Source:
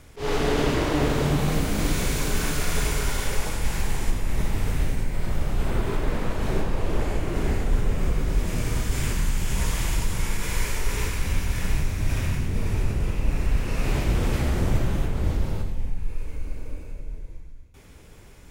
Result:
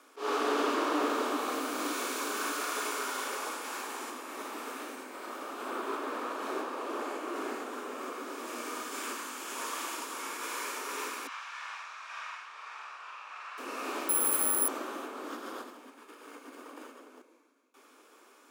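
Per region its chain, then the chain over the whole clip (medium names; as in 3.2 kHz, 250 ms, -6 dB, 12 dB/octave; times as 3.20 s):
11.27–13.58 s: high-pass 920 Hz 24 dB/octave + distance through air 140 m + doubling 46 ms -3 dB
14.09–14.68 s: bass shelf 180 Hz -7 dB + careless resampling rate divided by 4×, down filtered, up zero stuff
15.28–17.22 s: comb filter that takes the minimum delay 0.59 ms + level flattener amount 50%
whole clip: steep high-pass 250 Hz 72 dB/octave; peaking EQ 1.2 kHz +11.5 dB 0.53 oct; band-stop 2 kHz, Q 9.9; trim -6.5 dB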